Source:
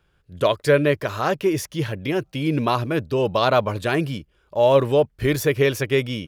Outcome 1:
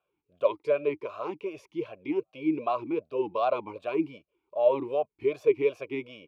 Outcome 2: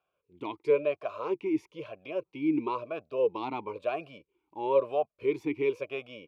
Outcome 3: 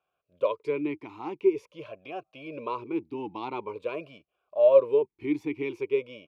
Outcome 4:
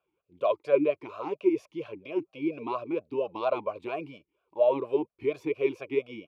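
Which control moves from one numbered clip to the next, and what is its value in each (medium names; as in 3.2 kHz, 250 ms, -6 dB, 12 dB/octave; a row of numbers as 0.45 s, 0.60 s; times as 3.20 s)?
talking filter, rate: 2.6 Hz, 1 Hz, 0.46 Hz, 4.3 Hz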